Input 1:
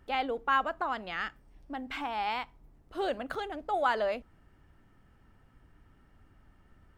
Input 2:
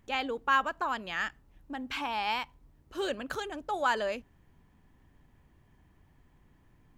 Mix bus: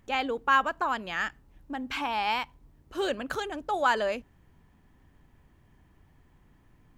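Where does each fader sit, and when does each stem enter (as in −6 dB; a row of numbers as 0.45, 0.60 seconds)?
−12.0, +2.0 decibels; 0.00, 0.00 seconds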